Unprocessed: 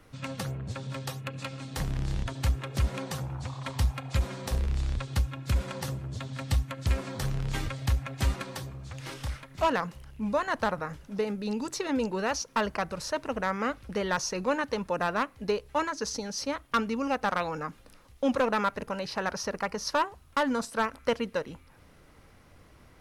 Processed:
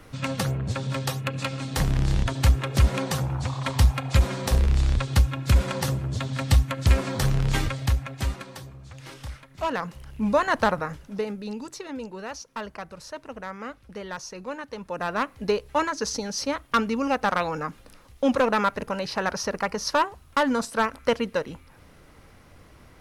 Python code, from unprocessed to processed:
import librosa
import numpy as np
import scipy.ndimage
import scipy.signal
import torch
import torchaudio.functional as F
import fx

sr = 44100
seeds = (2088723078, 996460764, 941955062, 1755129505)

y = fx.gain(x, sr, db=fx.line((7.53, 8.0), (8.45, -2.5), (9.63, -2.5), (10.15, 6.5), (10.67, 6.5), (11.94, -6.5), (14.7, -6.5), (15.31, 4.5)))